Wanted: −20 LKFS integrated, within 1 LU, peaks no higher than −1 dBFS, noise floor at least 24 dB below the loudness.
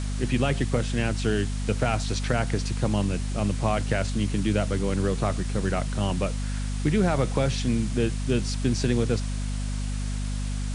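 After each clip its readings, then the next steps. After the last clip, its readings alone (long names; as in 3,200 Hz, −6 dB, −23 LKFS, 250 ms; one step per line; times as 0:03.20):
mains hum 50 Hz; hum harmonics up to 250 Hz; level of the hum −26 dBFS; background noise floor −29 dBFS; target noise floor −51 dBFS; integrated loudness −26.5 LKFS; sample peak −10.0 dBFS; target loudness −20.0 LKFS
→ mains-hum notches 50/100/150/200/250 Hz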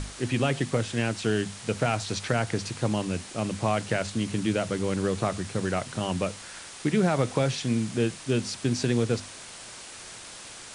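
mains hum none found; background noise floor −44 dBFS; target noise floor −52 dBFS
→ broadband denoise 8 dB, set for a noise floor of −44 dBFS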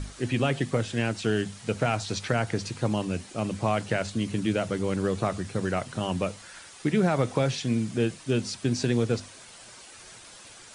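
background noise floor −48 dBFS; target noise floor −52 dBFS
→ broadband denoise 6 dB, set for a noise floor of −48 dBFS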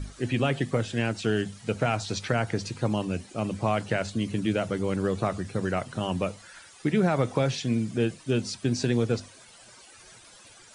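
background noise floor −52 dBFS; integrated loudness −28.0 LKFS; sample peak −12.0 dBFS; target loudness −20.0 LKFS
→ level +8 dB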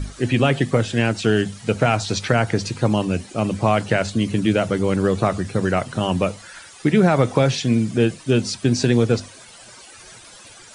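integrated loudness −20.0 LKFS; sample peak −4.0 dBFS; background noise floor −44 dBFS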